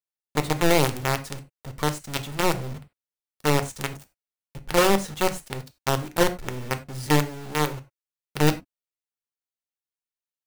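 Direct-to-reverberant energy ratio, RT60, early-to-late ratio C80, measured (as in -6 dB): 8.5 dB, no single decay rate, 21.0 dB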